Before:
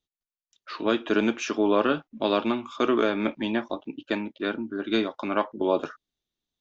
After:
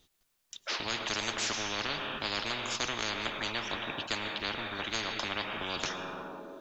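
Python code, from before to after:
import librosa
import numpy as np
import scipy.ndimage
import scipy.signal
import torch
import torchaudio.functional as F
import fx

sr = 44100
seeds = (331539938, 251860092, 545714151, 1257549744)

y = fx.rev_freeverb(x, sr, rt60_s=1.5, hf_ratio=0.75, predelay_ms=70, drr_db=16.0)
y = fx.spectral_comp(y, sr, ratio=10.0)
y = F.gain(torch.from_numpy(y), -3.0).numpy()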